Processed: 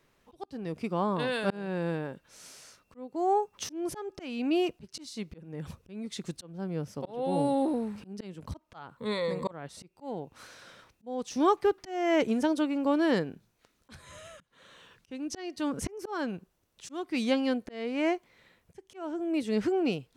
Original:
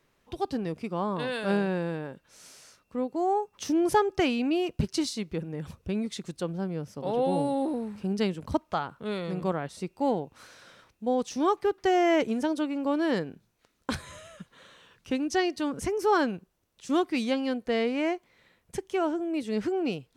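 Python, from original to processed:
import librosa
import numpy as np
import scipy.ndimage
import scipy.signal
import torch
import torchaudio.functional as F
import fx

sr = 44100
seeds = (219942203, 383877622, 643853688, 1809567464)

y = fx.ripple_eq(x, sr, per_octave=1.0, db=15, at=(8.97, 9.51))
y = fx.auto_swell(y, sr, attack_ms=392.0)
y = y * 10.0 ** (1.0 / 20.0)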